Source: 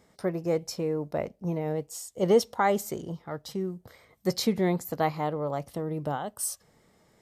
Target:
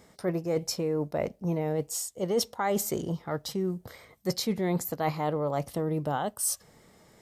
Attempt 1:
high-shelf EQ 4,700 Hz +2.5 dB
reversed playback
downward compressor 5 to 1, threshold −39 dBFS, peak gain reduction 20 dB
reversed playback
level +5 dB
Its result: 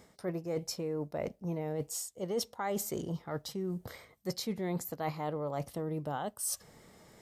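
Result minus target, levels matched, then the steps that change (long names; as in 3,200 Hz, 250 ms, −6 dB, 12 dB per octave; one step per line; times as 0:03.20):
downward compressor: peak gain reduction +7 dB
change: downward compressor 5 to 1, threshold −30.5 dBFS, peak gain reduction 13 dB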